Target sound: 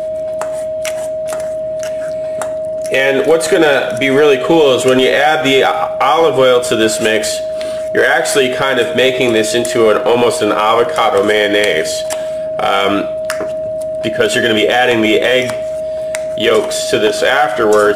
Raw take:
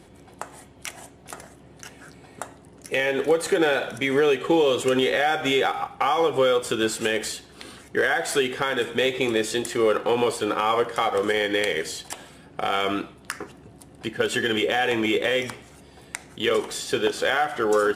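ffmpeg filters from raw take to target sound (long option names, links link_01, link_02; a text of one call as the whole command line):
ffmpeg -i in.wav -af "apsyclip=15dB,aeval=exprs='val(0)+0.224*sin(2*PI*630*n/s)':channel_layout=same,volume=-3.5dB" out.wav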